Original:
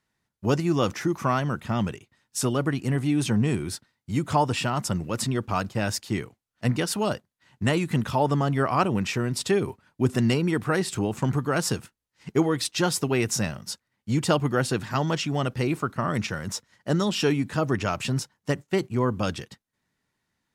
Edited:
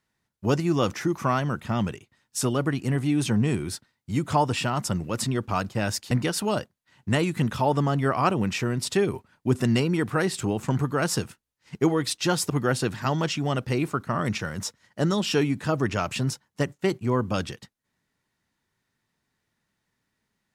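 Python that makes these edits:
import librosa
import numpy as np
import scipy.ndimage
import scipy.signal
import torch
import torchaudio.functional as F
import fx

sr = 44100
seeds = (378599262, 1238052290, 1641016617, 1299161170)

y = fx.edit(x, sr, fx.cut(start_s=6.11, length_s=0.54),
    fx.cut(start_s=13.04, length_s=1.35), tone=tone)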